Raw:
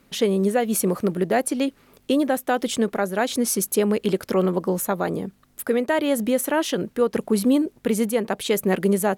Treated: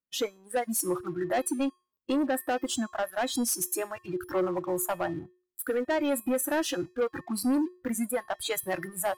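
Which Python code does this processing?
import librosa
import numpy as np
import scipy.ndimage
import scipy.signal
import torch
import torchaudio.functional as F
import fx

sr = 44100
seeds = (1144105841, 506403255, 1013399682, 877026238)

y = fx.noise_reduce_blind(x, sr, reduce_db=29)
y = fx.leveller(y, sr, passes=2)
y = fx.comb_fb(y, sr, f0_hz=360.0, decay_s=0.39, harmonics='odd', damping=0.0, mix_pct=70)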